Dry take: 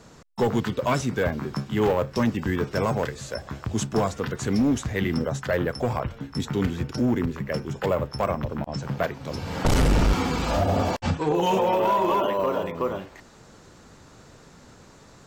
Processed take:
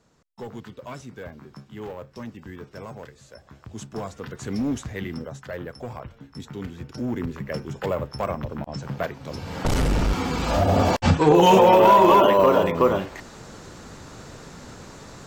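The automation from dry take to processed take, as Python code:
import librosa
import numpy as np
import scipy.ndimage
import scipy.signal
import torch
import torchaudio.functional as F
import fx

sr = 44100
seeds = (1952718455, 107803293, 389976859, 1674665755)

y = fx.gain(x, sr, db=fx.line((3.37, -14.0), (4.72, -3.5), (5.36, -9.5), (6.73, -9.5), (7.34, -2.0), (10.13, -2.0), (11.22, 8.0)))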